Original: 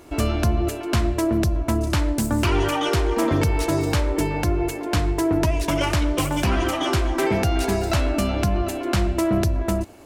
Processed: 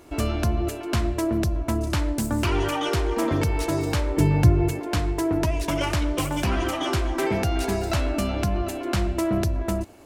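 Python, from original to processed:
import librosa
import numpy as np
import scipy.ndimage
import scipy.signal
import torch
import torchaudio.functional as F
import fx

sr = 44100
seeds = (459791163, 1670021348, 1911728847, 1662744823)

y = fx.peak_eq(x, sr, hz=120.0, db=15.0, octaves=1.5, at=(4.17, 4.8))
y = y * 10.0 ** (-3.0 / 20.0)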